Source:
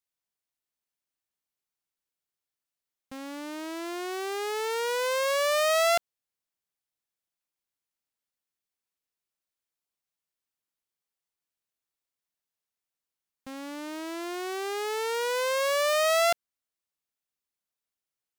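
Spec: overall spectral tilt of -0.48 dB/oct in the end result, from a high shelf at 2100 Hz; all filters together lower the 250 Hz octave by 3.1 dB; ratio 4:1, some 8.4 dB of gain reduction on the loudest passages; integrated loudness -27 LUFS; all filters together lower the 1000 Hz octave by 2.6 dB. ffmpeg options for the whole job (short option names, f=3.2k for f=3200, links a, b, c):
-af "equalizer=f=250:t=o:g=-4.5,equalizer=f=1k:t=o:g=-5,highshelf=f=2.1k:g=5.5,acompressor=threshold=-29dB:ratio=4,volume=6dB"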